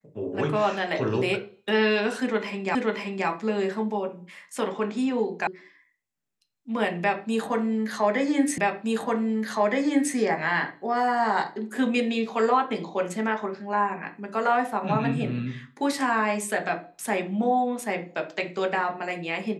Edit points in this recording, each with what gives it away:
2.75 s: repeat of the last 0.53 s
5.47 s: sound stops dead
8.58 s: repeat of the last 1.57 s

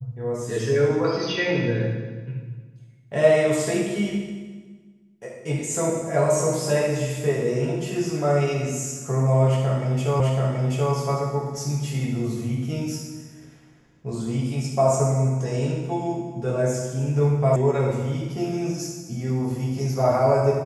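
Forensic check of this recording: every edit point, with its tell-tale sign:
10.20 s: repeat of the last 0.73 s
17.56 s: sound stops dead

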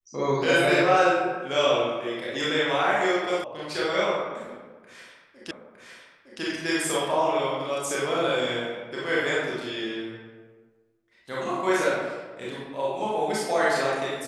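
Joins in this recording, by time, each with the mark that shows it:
3.44 s: sound stops dead
5.51 s: repeat of the last 0.91 s

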